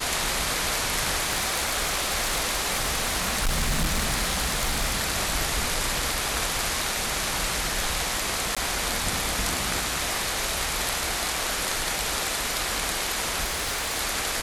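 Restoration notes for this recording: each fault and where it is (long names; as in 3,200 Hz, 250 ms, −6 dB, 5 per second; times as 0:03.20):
0:01.23–0:05.02: clipping −19.5 dBFS
0:08.55–0:08.57: drop-out 16 ms
0:13.43–0:13.99: clipping −23.5 dBFS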